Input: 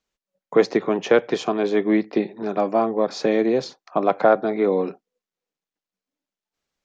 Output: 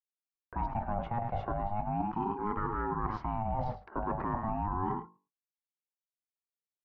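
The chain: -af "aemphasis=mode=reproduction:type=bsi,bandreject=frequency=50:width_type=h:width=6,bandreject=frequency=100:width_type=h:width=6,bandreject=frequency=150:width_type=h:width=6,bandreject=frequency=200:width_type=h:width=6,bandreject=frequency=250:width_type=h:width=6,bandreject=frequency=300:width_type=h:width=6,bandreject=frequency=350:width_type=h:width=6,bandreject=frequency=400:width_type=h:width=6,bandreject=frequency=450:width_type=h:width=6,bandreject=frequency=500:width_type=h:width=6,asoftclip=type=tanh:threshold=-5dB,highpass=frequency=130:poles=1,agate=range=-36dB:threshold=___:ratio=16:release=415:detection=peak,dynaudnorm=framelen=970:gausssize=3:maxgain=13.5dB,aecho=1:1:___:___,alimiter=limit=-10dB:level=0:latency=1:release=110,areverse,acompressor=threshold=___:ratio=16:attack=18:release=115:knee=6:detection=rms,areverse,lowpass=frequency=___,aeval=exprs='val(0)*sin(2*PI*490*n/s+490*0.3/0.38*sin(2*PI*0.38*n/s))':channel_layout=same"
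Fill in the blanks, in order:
-43dB, 107, 0.168, -27dB, 1.3k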